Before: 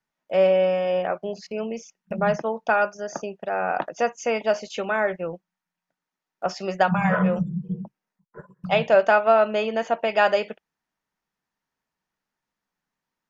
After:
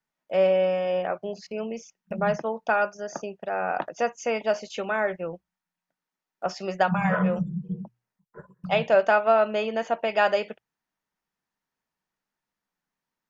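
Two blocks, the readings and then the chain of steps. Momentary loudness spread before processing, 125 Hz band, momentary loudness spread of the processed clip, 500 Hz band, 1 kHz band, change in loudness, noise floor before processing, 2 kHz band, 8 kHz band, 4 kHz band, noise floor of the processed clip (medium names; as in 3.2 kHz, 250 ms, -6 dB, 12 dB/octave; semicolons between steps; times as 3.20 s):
14 LU, -2.5 dB, 14 LU, -2.5 dB, -2.5 dB, -2.5 dB, under -85 dBFS, -2.5 dB, no reading, -2.5 dB, under -85 dBFS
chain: hum notches 60/120 Hz; trim -2.5 dB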